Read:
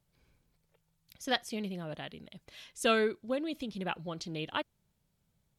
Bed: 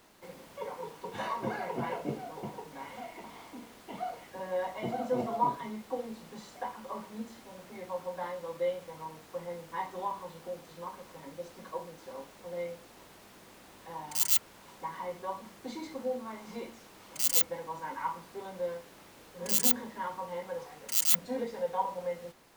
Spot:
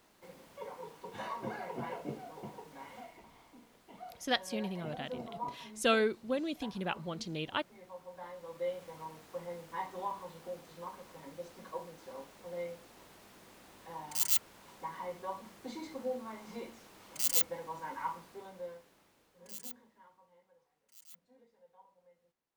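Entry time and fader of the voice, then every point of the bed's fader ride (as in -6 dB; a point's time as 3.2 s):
3.00 s, -0.5 dB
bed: 2.99 s -5.5 dB
3.24 s -11.5 dB
8.06 s -11.5 dB
8.84 s -3 dB
18.1 s -3 dB
20.58 s -30.5 dB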